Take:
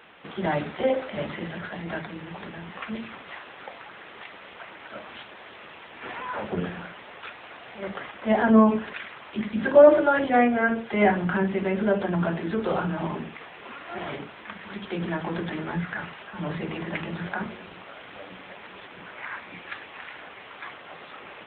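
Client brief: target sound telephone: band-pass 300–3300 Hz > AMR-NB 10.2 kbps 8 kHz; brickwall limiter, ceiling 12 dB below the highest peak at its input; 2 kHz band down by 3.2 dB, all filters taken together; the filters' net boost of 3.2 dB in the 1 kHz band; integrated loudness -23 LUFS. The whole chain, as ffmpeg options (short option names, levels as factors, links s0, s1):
-af "equalizer=f=1000:t=o:g=6,equalizer=f=2000:t=o:g=-6.5,alimiter=limit=0.2:level=0:latency=1,highpass=300,lowpass=3300,volume=2.37" -ar 8000 -c:a libopencore_amrnb -b:a 10200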